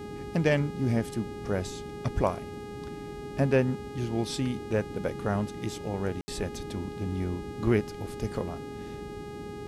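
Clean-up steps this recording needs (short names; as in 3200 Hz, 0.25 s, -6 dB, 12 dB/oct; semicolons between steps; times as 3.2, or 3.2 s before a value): de-hum 412.9 Hz, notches 31; room tone fill 6.21–6.28; noise print and reduce 30 dB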